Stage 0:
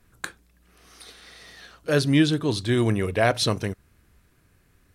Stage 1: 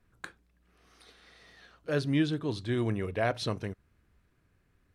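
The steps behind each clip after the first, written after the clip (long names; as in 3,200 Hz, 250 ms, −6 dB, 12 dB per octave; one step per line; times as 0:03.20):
high-shelf EQ 5,500 Hz −12 dB
level −8 dB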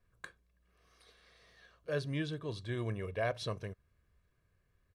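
comb filter 1.8 ms, depth 50%
level −7 dB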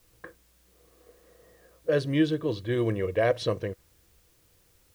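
low-pass that shuts in the quiet parts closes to 810 Hz, open at −32 dBFS
hollow resonant body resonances 330/490/1,900/3,000 Hz, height 11 dB, ringing for 45 ms
bit-depth reduction 12 bits, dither triangular
level +6.5 dB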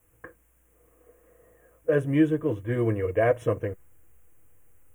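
notch comb filter 190 Hz
in parallel at −8 dB: slack as between gear wheels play −33.5 dBFS
on the sum: Butterworth band-reject 4,400 Hz, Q 0.85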